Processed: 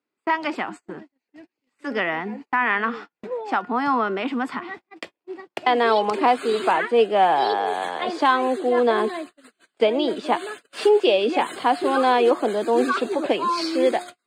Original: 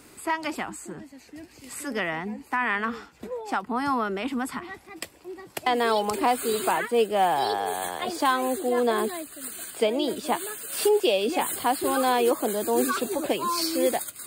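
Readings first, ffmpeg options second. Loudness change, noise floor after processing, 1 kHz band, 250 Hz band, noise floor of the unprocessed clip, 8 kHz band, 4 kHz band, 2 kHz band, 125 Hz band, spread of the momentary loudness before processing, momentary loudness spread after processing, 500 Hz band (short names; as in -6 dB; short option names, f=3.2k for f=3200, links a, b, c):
+4.5 dB, -84 dBFS, +5.0 dB, +3.0 dB, -53 dBFS, under -10 dB, +2.0 dB, +4.5 dB, n/a, 16 LU, 16 LU, +4.5 dB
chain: -af "highpass=220,lowpass=3.6k,bandreject=f=357.3:t=h:w=4,bandreject=f=714.6:t=h:w=4,bandreject=f=1.0719k:t=h:w=4,bandreject=f=1.4292k:t=h:w=4,bandreject=f=1.7865k:t=h:w=4,bandreject=f=2.1438k:t=h:w=4,bandreject=f=2.5011k:t=h:w=4,bandreject=f=2.8584k:t=h:w=4,bandreject=f=3.2157k:t=h:w=4,bandreject=f=3.573k:t=h:w=4,agate=range=-36dB:threshold=-41dB:ratio=16:detection=peak,volume=5dB"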